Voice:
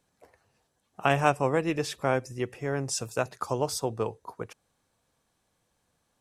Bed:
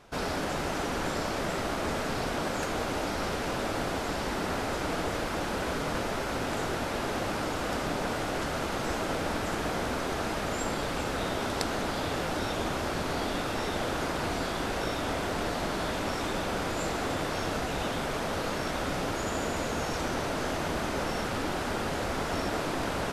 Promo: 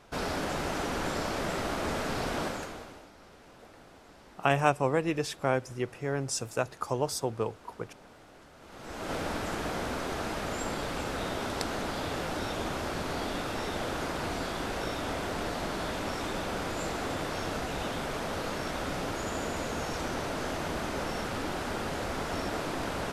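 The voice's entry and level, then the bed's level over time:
3.40 s, -1.5 dB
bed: 2.44 s -1 dB
3.11 s -22.5 dB
8.57 s -22.5 dB
9.13 s -2.5 dB

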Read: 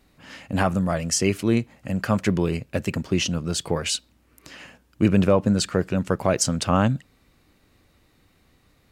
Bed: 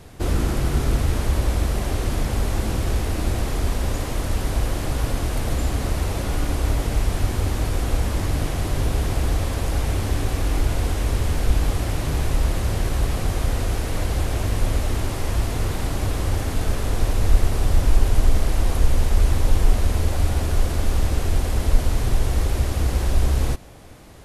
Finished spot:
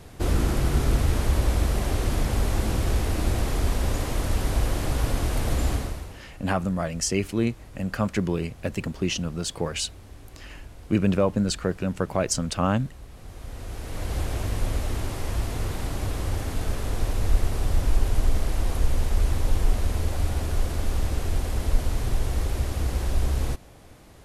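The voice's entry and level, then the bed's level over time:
5.90 s, -3.5 dB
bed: 5.73 s -1.5 dB
6.25 s -22.5 dB
13.09 s -22.5 dB
14.16 s -5 dB

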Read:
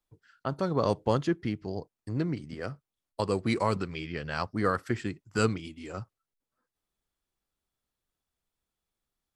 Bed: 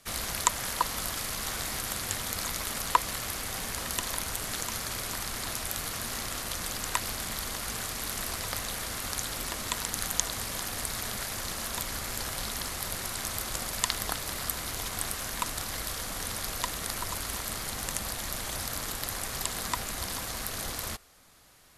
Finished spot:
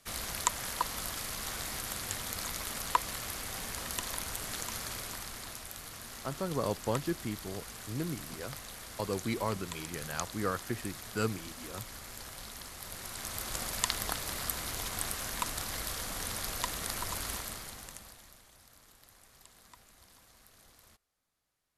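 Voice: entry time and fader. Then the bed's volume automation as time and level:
5.80 s, -6.0 dB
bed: 4.88 s -4.5 dB
5.7 s -11 dB
12.73 s -11 dB
13.61 s -2.5 dB
17.31 s -2.5 dB
18.5 s -25 dB

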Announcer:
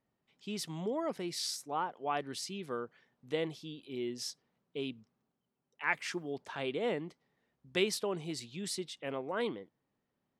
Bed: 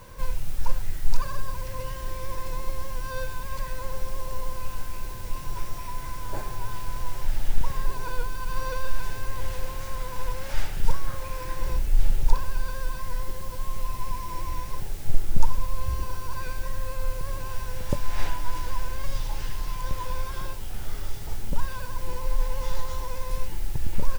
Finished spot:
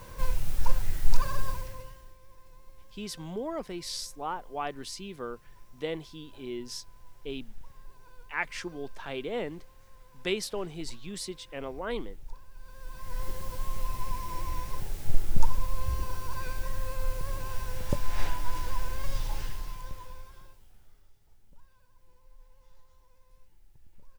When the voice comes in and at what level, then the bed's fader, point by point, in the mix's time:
2.50 s, +0.5 dB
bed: 1.49 s 0 dB
2.18 s -23 dB
12.5 s -23 dB
13.25 s -2.5 dB
19.37 s -2.5 dB
21.12 s -31 dB

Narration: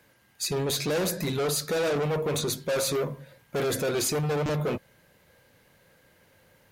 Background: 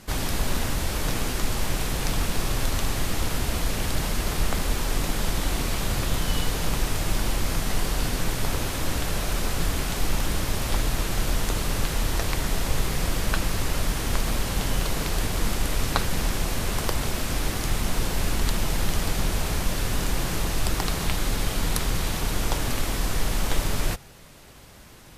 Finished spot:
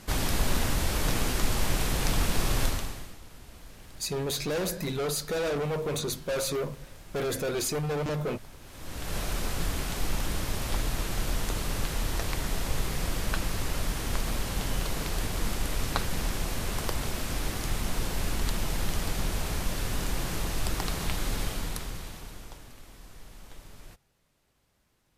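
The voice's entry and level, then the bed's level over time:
3.60 s, -3.0 dB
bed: 2.65 s -1 dB
3.2 s -22.5 dB
8.6 s -22.5 dB
9.16 s -5 dB
21.42 s -5 dB
22.74 s -23.5 dB

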